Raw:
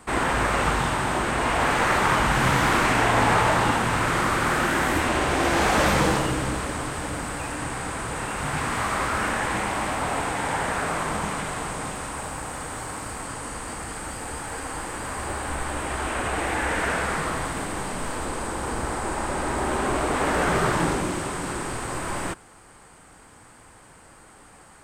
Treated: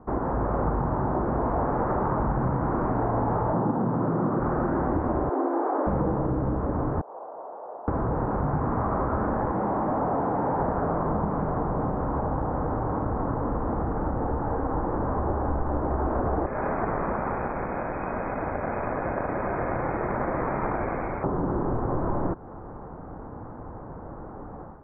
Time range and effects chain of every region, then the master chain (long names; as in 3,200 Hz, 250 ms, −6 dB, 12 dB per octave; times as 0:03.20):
0:03.53–0:04.40: high-pass filter 150 Hz 24 dB per octave + low-shelf EQ 240 Hz +10.5 dB + linearly interpolated sample-rate reduction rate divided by 8×
0:05.29–0:05.87: Chebyshev high-pass with heavy ripple 260 Hz, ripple 3 dB + high shelf with overshoot 3,900 Hz +8 dB, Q 3
0:07.01–0:07.88: wrap-around overflow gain 31.5 dB + flat-topped band-pass 710 Hz, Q 1.4
0:09.51–0:10.60: high-pass filter 130 Hz + hard clipping −25.5 dBFS
0:16.46–0:21.24: samples sorted by size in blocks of 16 samples + voice inversion scrambler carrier 2,500 Hz
whole clip: automatic gain control; Bessel low-pass filter 710 Hz, order 6; downward compressor 4 to 1, threshold −27 dBFS; level +3 dB